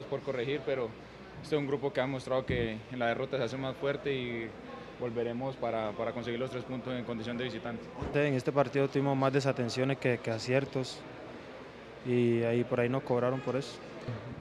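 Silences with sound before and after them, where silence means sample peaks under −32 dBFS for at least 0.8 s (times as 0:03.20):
0:10.92–0:12.06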